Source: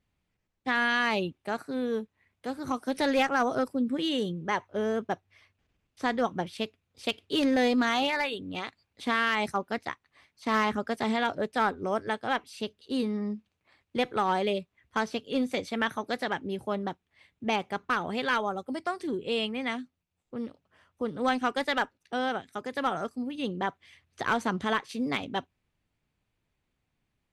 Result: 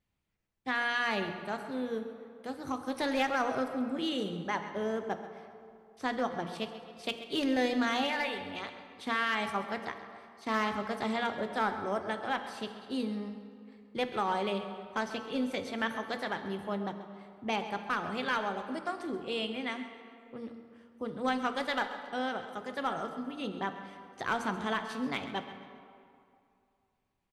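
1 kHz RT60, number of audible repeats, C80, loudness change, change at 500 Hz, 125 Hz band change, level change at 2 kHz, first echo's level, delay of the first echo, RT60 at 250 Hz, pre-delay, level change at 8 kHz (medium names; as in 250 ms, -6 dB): 2.5 s, 2, 8.5 dB, -4.0 dB, -4.5 dB, -4.0 dB, -4.0 dB, -14.0 dB, 133 ms, 2.3 s, 3 ms, -4.0 dB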